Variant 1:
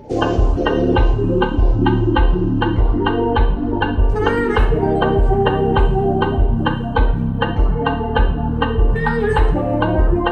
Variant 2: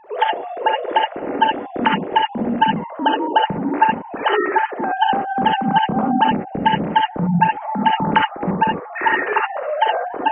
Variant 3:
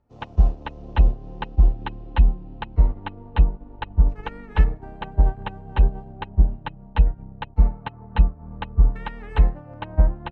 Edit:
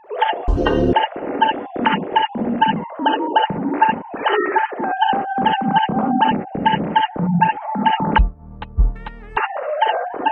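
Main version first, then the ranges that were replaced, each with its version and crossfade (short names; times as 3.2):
2
0.48–0.93 from 1
8.18–9.37 from 3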